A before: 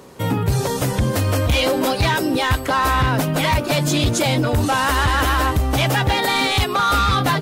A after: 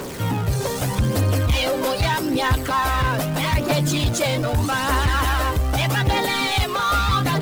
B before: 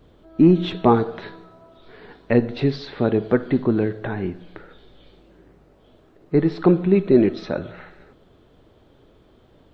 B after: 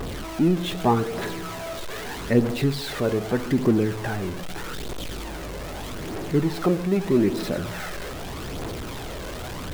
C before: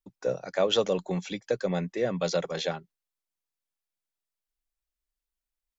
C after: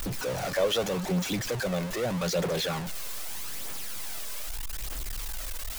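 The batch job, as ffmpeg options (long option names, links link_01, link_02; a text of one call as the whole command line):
ffmpeg -i in.wav -af "aeval=exprs='val(0)+0.5*0.0708*sgn(val(0))':channel_layout=same,aphaser=in_gain=1:out_gain=1:delay=2:decay=0.38:speed=0.81:type=triangular,volume=-5.5dB" out.wav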